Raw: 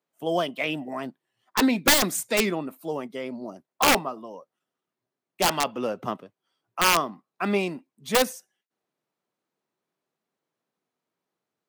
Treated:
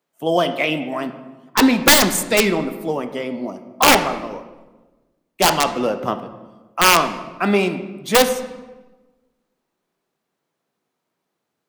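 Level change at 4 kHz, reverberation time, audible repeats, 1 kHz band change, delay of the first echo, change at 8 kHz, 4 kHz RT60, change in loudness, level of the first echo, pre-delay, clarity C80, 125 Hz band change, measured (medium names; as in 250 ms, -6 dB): +7.5 dB, 1.2 s, no echo, +8.0 dB, no echo, +7.0 dB, 0.80 s, +7.5 dB, no echo, 10 ms, 12.5 dB, +8.0 dB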